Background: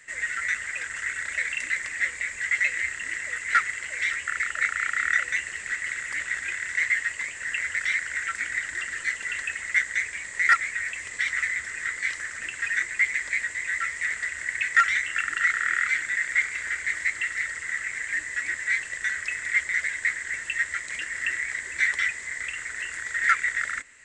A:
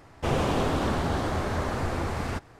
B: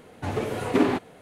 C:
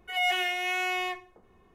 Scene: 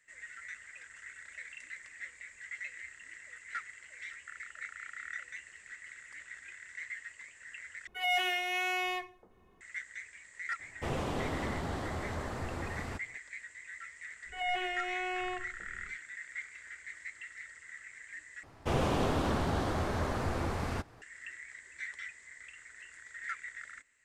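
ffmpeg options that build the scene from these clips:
-filter_complex "[3:a]asplit=2[a][b];[1:a]asplit=2[c][d];[0:a]volume=-18.5dB[e];[b]aemphasis=mode=reproduction:type=riaa[f];[e]asplit=3[g][h][i];[g]atrim=end=7.874[j];[a]atrim=end=1.74,asetpts=PTS-STARTPTS,volume=-3.5dB[k];[h]atrim=start=9.606:end=18.434[l];[d]atrim=end=2.59,asetpts=PTS-STARTPTS,volume=-4.5dB[m];[i]atrim=start=21.016[n];[c]atrim=end=2.59,asetpts=PTS-STARTPTS,volume=-9.5dB,afade=t=in:d=0.004:c=hsin,afade=t=out:st=2.586:d=0.004:c=hsin,adelay=10590[o];[f]atrim=end=1.74,asetpts=PTS-STARTPTS,volume=-6dB,afade=t=in:d=0.1,afade=t=out:st=1.64:d=0.1,adelay=14240[p];[j][k]acrossfade=d=0.004:c1=hsin:c2=hsin[q];[q][l]acrossfade=d=0.004:c1=hsin:c2=hsin[r];[r][m]acrossfade=d=0.004:c1=hsin:c2=hsin[s];[s][n]acrossfade=d=0.004:c1=hsin:c2=hsin[t];[t][o][p]amix=inputs=3:normalize=0"

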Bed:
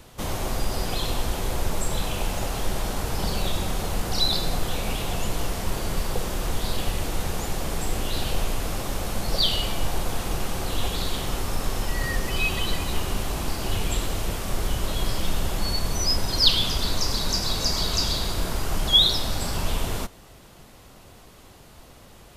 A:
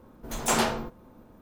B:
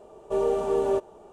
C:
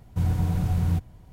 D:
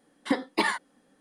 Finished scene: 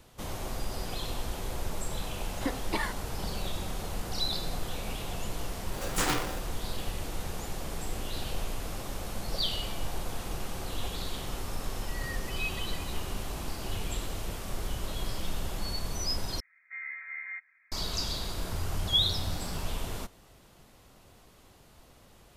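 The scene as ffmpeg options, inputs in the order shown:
-filter_complex "[0:a]volume=-8.5dB[a];[1:a]aeval=exprs='val(0)*sgn(sin(2*PI*530*n/s))':c=same[b];[2:a]lowpass=f=2.1k:t=q:w=0.5098,lowpass=f=2.1k:t=q:w=0.6013,lowpass=f=2.1k:t=q:w=0.9,lowpass=f=2.1k:t=q:w=2.563,afreqshift=-2500[c];[3:a]acrossover=split=160[d][e];[e]adelay=580[f];[d][f]amix=inputs=2:normalize=0[g];[a]asplit=2[h][i];[h]atrim=end=16.404[j];[c]atrim=end=1.32,asetpts=PTS-STARTPTS,volume=-16dB[k];[i]atrim=start=17.716[l];[4:a]atrim=end=1.2,asetpts=PTS-STARTPTS,volume=-7dB,afade=t=in:d=0.004:c=hsin,afade=t=out:st=1.196:d=0.004:c=hsin,adelay=2150[m];[b]atrim=end=1.41,asetpts=PTS-STARTPTS,volume=-5dB,afade=t=in:d=0.004:c=hsin,afade=t=out:st=1.406:d=0.004:c=hsin,adelay=5500[n];[g]atrim=end=1.32,asetpts=PTS-STARTPTS,volume=-11.5dB,afade=t=in:d=0.004:c=hsin,afade=t=out:st=1.316:d=0.004:c=hsin,adelay=18350[o];[j][k]acrossfade=d=0.004:c1=hsin:c2=hsin[p];[p][l]acrossfade=d=0.004:c1=hsin:c2=hsin[q];[q][m][n][o]amix=inputs=4:normalize=0"

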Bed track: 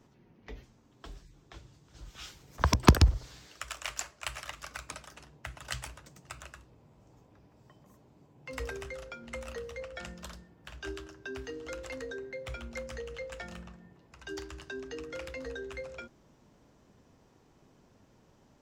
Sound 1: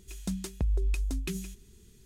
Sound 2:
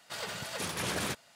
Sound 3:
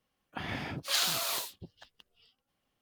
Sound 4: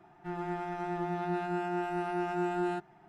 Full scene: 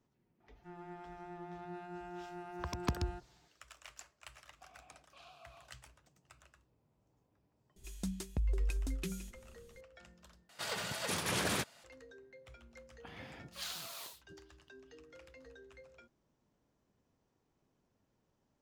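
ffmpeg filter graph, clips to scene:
-filter_complex "[3:a]asplit=2[a][b];[0:a]volume=-16dB[c];[a]asplit=3[d][e][f];[d]bandpass=f=730:t=q:w=8,volume=0dB[g];[e]bandpass=f=1.09k:t=q:w=8,volume=-6dB[h];[f]bandpass=f=2.44k:t=q:w=8,volume=-9dB[i];[g][h][i]amix=inputs=3:normalize=0[j];[c]asplit=2[k][l];[k]atrim=end=10.494[m];[2:a]atrim=end=1.35,asetpts=PTS-STARTPTS,volume=-0.5dB[n];[l]atrim=start=11.836[o];[4:a]atrim=end=3.08,asetpts=PTS-STARTPTS,volume=-13.5dB,afade=t=in:d=0.004:c=hsin,afade=t=out:st=3.076:d=0.004:c=hsin,adelay=400[p];[j]atrim=end=2.81,asetpts=PTS-STARTPTS,volume=-13dB,afade=t=in:d=0.004:c=hsin,afade=t=out:st=2.806:d=0.004:c=hsin,adelay=187425S[q];[1:a]atrim=end=2.05,asetpts=PTS-STARTPTS,volume=-5.5dB,afade=t=in:d=0.004:c=hsin,afade=t=out:st=2.046:d=0.004:c=hsin,adelay=7760[r];[b]atrim=end=2.81,asetpts=PTS-STARTPTS,volume=-14dB,afade=t=in:d=0.004:c=hsin,afade=t=out:st=2.806:d=0.004:c=hsin,adelay=559188S[s];[m][n]acrossfade=d=0.004:c1=hsin:c2=hsin[t];[t][o]acrossfade=d=0.004:c1=hsin:c2=hsin[u];[u][p][q][r][s]amix=inputs=5:normalize=0"

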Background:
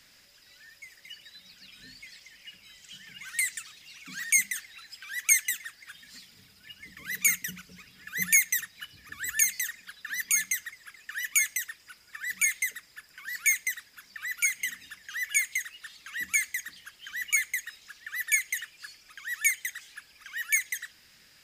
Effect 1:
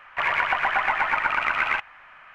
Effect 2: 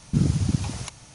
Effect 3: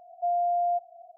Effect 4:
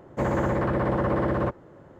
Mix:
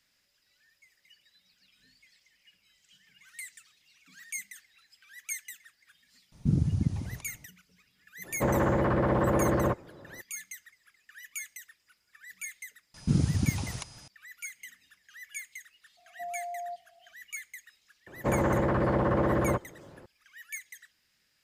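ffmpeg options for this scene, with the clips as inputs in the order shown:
-filter_complex "[2:a]asplit=2[a][b];[4:a]asplit=2[c][d];[0:a]volume=-14.5dB[e];[a]tiltshelf=f=640:g=7[f];[b]aeval=exprs='val(0)+0.00316*sin(2*PI*5000*n/s)':c=same[g];[f]atrim=end=1.14,asetpts=PTS-STARTPTS,volume=-10.5dB,afade=t=in:d=0.004:c=hsin,afade=t=out:st=1.136:d=0.004:c=hsin,adelay=6320[h];[c]atrim=end=1.99,asetpts=PTS-STARTPTS,volume=-1dB,afade=t=in:d=0.02,afade=t=out:st=1.97:d=0.02,adelay=8230[i];[g]atrim=end=1.14,asetpts=PTS-STARTPTS,volume=-4dB,afade=t=in:d=0.004:c=hsin,afade=t=out:st=1.136:d=0.004:c=hsin,adelay=12940[j];[3:a]atrim=end=1.17,asetpts=PTS-STARTPTS,volume=-12dB,afade=t=in:d=0.004:c=hsin,afade=t=out:st=1.166:d=0.004:c=hsin,adelay=15970[k];[d]atrim=end=1.99,asetpts=PTS-STARTPTS,volume=-1.5dB,afade=t=in:d=0.004:c=hsin,afade=t=out:st=1.986:d=0.004:c=hsin,adelay=18070[l];[e][h][i][j][k][l]amix=inputs=6:normalize=0"

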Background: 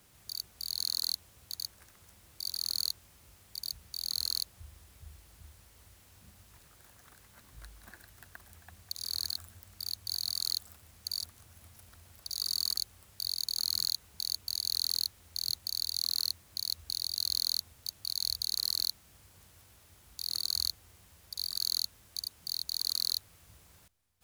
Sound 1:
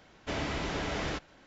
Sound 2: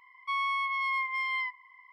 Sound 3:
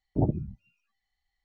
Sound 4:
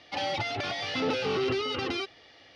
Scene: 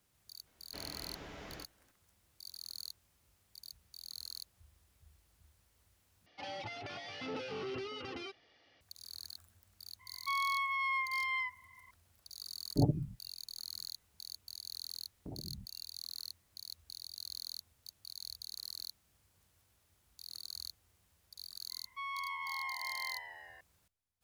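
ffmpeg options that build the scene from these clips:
-filter_complex "[2:a]asplit=2[a][b];[3:a]asplit=2[c][d];[0:a]volume=-13dB[e];[4:a]equalizer=f=3.8k:t=o:w=0.23:g=-3.5[f];[c]aecho=1:1:7:0.65[g];[d]acompressor=threshold=-36dB:ratio=6:attack=3.2:release=140:knee=1:detection=peak[h];[b]asplit=9[i][j][k][l][m][n][o][p][q];[j]adelay=162,afreqshift=-95,volume=-8.5dB[r];[k]adelay=324,afreqshift=-190,volume=-12.7dB[s];[l]adelay=486,afreqshift=-285,volume=-16.8dB[t];[m]adelay=648,afreqshift=-380,volume=-21dB[u];[n]adelay=810,afreqshift=-475,volume=-25.1dB[v];[o]adelay=972,afreqshift=-570,volume=-29.3dB[w];[p]adelay=1134,afreqshift=-665,volume=-33.4dB[x];[q]adelay=1296,afreqshift=-760,volume=-37.6dB[y];[i][r][s][t][u][v][w][x][y]amix=inputs=9:normalize=0[z];[e]asplit=2[aa][ab];[aa]atrim=end=6.264[ac];[f]atrim=end=2.55,asetpts=PTS-STARTPTS,volume=-12.5dB[ad];[ab]atrim=start=8.806[ae];[1:a]atrim=end=1.46,asetpts=PTS-STARTPTS,volume=-15.5dB,afade=t=in:d=0.004:c=hsin,afade=t=out:st=1.456:d=0.004:c=hsin,adelay=460[af];[a]atrim=end=1.92,asetpts=PTS-STARTPTS,volume=-4dB,afade=t=in:d=0.004:c=hsin,afade=t=out:st=1.916:d=0.004:c=hsin,adelay=9990[ag];[g]atrim=end=1.44,asetpts=PTS-STARTPTS,volume=-6dB,afade=t=in:d=0.004:c=hsin,afade=t=out:st=1.436:d=0.004:c=hsin,adelay=12600[ah];[h]atrim=end=1.44,asetpts=PTS-STARTPTS,volume=-6.5dB,afade=t=in:d=0.004:c=hsin,afade=t=out:st=1.436:d=0.004:c=hsin,adelay=15100[ai];[z]atrim=end=1.92,asetpts=PTS-STARTPTS,volume=-11dB,afade=t=in:d=0.004:c=hsin,afade=t=out:st=1.916:d=0.004:c=hsin,adelay=21690[aj];[ac][ad]acrossfade=d=0.004:c1=hsin:c2=hsin[ak];[ak][ae]acrossfade=d=0.004:c1=hsin:c2=hsin[al];[al][af][ag][ah][ai][aj]amix=inputs=6:normalize=0"

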